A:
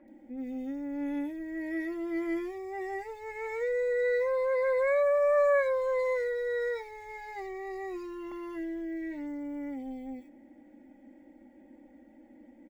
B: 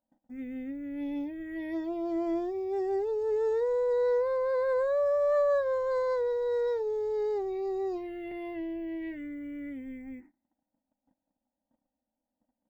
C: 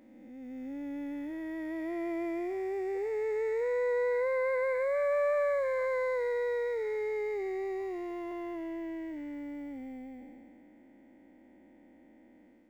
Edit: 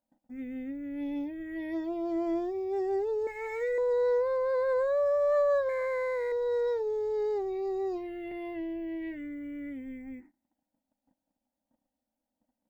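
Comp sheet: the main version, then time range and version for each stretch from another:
B
3.27–3.78 from A
5.69–6.32 from C

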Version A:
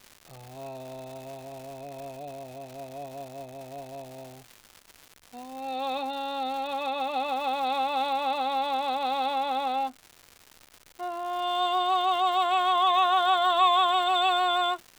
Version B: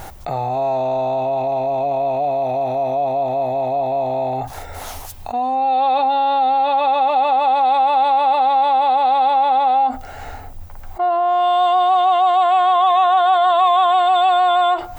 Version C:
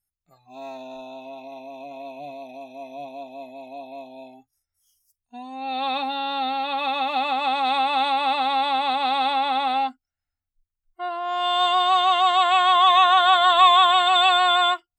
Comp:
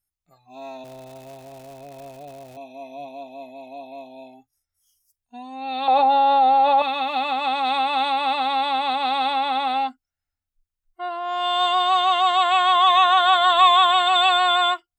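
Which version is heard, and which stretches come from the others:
C
0.84–2.57 from A
5.88–6.82 from B

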